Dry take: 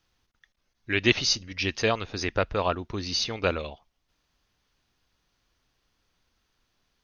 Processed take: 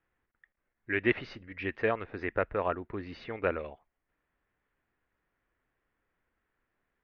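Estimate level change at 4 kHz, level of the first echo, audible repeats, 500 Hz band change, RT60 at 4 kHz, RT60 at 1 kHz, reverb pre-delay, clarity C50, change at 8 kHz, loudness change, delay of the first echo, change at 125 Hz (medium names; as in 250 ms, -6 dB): -21.5 dB, no echo, no echo, -3.5 dB, no reverb, no reverb, no reverb, no reverb, no reading, -6.5 dB, no echo, -8.5 dB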